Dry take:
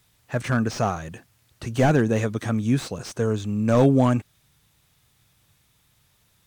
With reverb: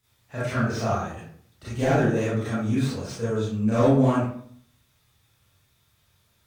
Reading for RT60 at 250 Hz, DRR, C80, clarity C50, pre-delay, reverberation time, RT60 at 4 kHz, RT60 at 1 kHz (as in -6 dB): 0.65 s, -11.0 dB, 4.0 dB, -1.5 dB, 29 ms, 0.60 s, 0.40 s, 0.55 s